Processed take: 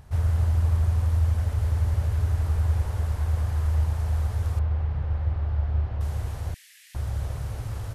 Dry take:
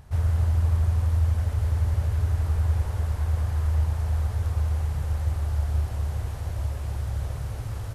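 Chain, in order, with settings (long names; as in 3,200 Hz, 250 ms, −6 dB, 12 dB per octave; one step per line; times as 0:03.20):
0:04.59–0:06.01: high-frequency loss of the air 310 metres
0:06.54–0:06.95: Chebyshev high-pass filter 1,800 Hz, order 5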